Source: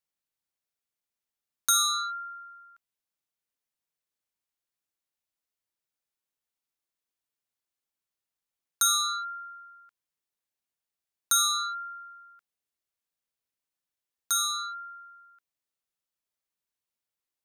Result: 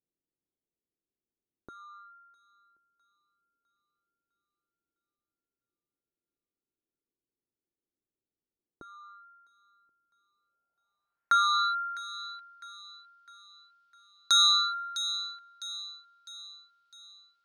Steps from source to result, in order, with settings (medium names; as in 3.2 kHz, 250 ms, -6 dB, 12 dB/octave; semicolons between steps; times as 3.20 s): low-pass sweep 360 Hz -> 4.2 kHz, 10.34–11.83 s; feedback echo behind a high-pass 655 ms, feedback 46%, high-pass 2.3 kHz, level -10 dB; trim +3 dB